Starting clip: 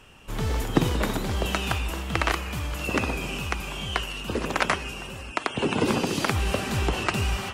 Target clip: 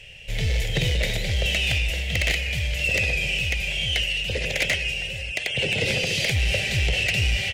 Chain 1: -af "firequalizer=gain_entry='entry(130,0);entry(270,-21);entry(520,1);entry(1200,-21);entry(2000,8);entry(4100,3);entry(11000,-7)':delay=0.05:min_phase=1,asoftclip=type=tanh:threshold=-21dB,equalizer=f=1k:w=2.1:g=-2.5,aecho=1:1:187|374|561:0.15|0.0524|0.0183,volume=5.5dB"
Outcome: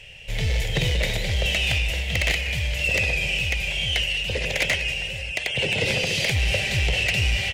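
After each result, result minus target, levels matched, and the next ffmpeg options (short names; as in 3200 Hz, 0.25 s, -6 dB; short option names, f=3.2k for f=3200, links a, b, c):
echo-to-direct +9.5 dB; 1000 Hz band +3.0 dB
-af "firequalizer=gain_entry='entry(130,0);entry(270,-21);entry(520,1);entry(1200,-21);entry(2000,8);entry(4100,3);entry(11000,-7)':delay=0.05:min_phase=1,asoftclip=type=tanh:threshold=-21dB,equalizer=f=1k:w=2.1:g=-2.5,aecho=1:1:187|374:0.0501|0.0175,volume=5.5dB"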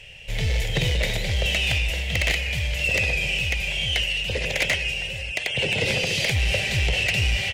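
1000 Hz band +3.0 dB
-af "firequalizer=gain_entry='entry(130,0);entry(270,-21);entry(520,1);entry(1200,-21);entry(2000,8);entry(4100,3);entry(11000,-7)':delay=0.05:min_phase=1,asoftclip=type=tanh:threshold=-21dB,equalizer=f=1k:w=2.1:g=-9,aecho=1:1:187|374:0.0501|0.0175,volume=5.5dB"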